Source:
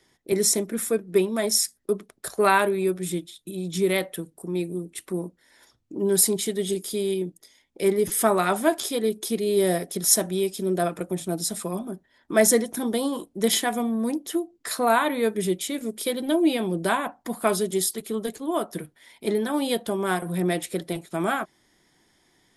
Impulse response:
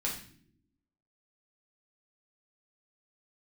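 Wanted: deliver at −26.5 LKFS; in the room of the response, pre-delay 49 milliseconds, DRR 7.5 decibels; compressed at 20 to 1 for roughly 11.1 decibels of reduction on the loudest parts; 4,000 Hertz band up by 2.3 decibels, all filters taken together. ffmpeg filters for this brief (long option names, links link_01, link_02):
-filter_complex "[0:a]equalizer=frequency=4000:width_type=o:gain=3,acompressor=threshold=-25dB:ratio=20,asplit=2[link_01][link_02];[1:a]atrim=start_sample=2205,adelay=49[link_03];[link_02][link_03]afir=irnorm=-1:irlink=0,volume=-11.5dB[link_04];[link_01][link_04]amix=inputs=2:normalize=0,volume=3.5dB"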